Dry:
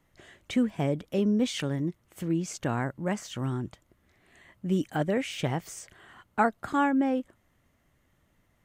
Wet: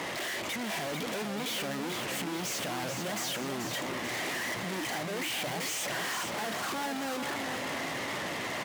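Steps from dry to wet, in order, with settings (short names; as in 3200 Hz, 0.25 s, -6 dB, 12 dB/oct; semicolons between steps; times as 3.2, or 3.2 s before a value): high shelf 8600 Hz -11.5 dB; power-law curve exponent 0.7; bell 1400 Hz -7.5 dB 0.45 oct; overdrive pedal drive 38 dB, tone 3100 Hz, clips at -12 dBFS; overloaded stage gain 34.5 dB; Bessel high-pass 160 Hz, order 2; feedback echo 0.437 s, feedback 51%, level -6 dB; record warp 78 rpm, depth 100 cents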